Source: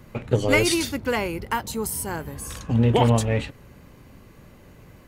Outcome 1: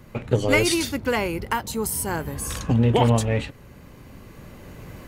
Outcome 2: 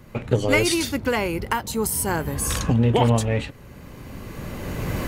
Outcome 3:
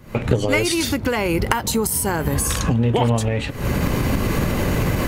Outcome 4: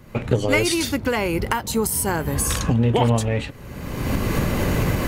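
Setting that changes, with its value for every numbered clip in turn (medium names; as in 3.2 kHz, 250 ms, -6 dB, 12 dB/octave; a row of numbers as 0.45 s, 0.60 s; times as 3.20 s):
recorder AGC, rising by: 5.3 dB/s, 14 dB/s, 90 dB/s, 35 dB/s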